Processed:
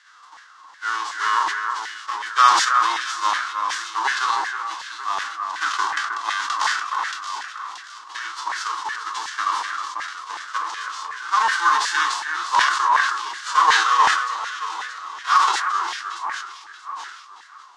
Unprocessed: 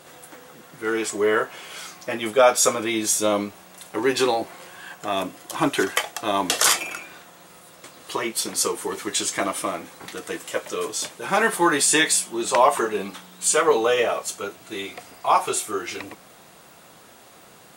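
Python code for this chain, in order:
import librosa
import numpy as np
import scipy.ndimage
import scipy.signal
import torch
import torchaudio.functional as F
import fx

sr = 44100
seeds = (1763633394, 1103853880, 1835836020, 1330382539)

y = fx.envelope_flatten(x, sr, power=0.3)
y = fx.cabinet(y, sr, low_hz=210.0, low_slope=24, high_hz=6100.0, hz=(320.0, 630.0, 1100.0, 2400.0), db=(9, -9, 9, -9))
y = fx.echo_alternate(y, sr, ms=314, hz=2100.0, feedback_pct=64, wet_db=-4.5)
y = fx.filter_lfo_highpass(y, sr, shape='saw_down', hz=2.7, low_hz=860.0, high_hz=1800.0, q=4.9)
y = fx.sustainer(y, sr, db_per_s=52.0)
y = F.gain(torch.from_numpy(y), -7.0).numpy()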